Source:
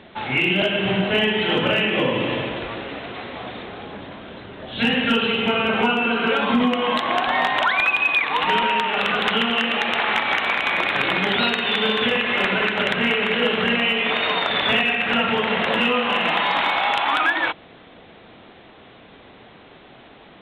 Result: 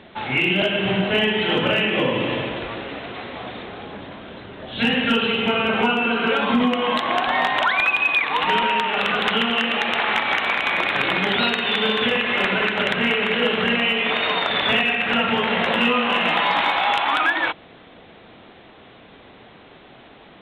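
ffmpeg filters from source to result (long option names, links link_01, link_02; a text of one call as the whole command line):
ffmpeg -i in.wav -filter_complex "[0:a]asettb=1/sr,asplit=3[link_01][link_02][link_03];[link_01]atrim=end=15.304[link_04];[link_02]atrim=start=15.3:end=16.97,asetpts=PTS-STARTPTS,afade=type=in:duration=0.004:curve=qsin,afade=type=out:start_time=1.666:duration=0.004:curve=qsin,asplit=2[link_05][link_06];[link_06]adelay=17,volume=-8.5dB[link_07];[link_05][link_07]amix=inputs=2:normalize=0,atrim=end_sample=73647[link_08];[link_03]atrim=start=16.966[link_09];[link_04][link_08]acrossfade=duration=0.004:curve1=hsin:curve2=qsin[link_10];[link_10][link_09]acrossfade=duration=0.004:curve1=qsin:curve2=hsin" out.wav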